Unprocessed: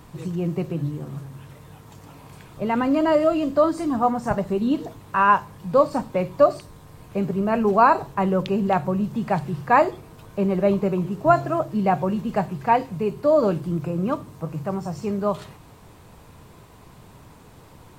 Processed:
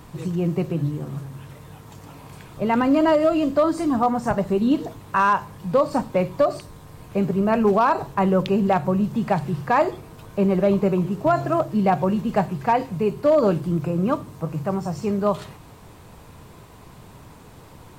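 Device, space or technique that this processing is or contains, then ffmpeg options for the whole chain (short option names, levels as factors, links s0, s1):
limiter into clipper: -af "alimiter=limit=0.266:level=0:latency=1:release=98,asoftclip=type=hard:threshold=0.224,volume=1.33"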